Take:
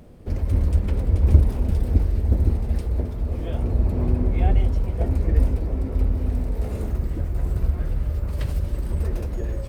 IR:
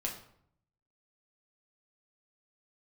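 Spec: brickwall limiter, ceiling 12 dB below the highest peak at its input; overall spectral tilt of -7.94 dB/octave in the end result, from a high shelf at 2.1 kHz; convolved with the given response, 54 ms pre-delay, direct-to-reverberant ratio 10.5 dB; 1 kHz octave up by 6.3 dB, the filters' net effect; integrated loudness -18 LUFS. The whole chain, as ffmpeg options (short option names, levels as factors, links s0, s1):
-filter_complex "[0:a]equalizer=f=1000:t=o:g=7.5,highshelf=f=2100:g=7.5,alimiter=limit=0.211:level=0:latency=1,asplit=2[s0][s1];[1:a]atrim=start_sample=2205,adelay=54[s2];[s1][s2]afir=irnorm=-1:irlink=0,volume=0.237[s3];[s0][s3]amix=inputs=2:normalize=0,volume=2.24"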